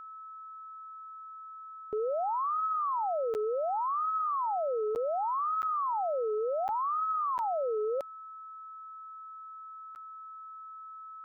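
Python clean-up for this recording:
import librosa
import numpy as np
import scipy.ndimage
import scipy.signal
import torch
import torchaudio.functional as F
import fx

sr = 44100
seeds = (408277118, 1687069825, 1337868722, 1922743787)

y = fx.notch(x, sr, hz=1300.0, q=30.0)
y = fx.fix_interpolate(y, sr, at_s=(3.34, 4.95, 5.62, 6.68, 7.38, 9.95), length_ms=9.5)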